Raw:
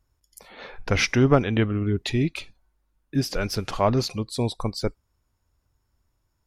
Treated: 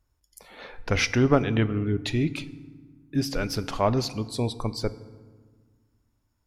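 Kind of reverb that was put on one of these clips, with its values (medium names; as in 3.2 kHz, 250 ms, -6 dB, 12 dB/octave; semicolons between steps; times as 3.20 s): FDN reverb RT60 1.5 s, low-frequency decay 1.45×, high-frequency decay 0.6×, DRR 14.5 dB; trim -2 dB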